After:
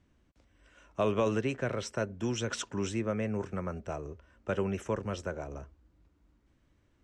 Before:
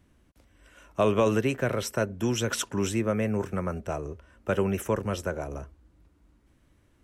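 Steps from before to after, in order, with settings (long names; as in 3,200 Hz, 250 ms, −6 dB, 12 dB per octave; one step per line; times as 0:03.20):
low-pass filter 7,500 Hz 24 dB per octave
level −5.5 dB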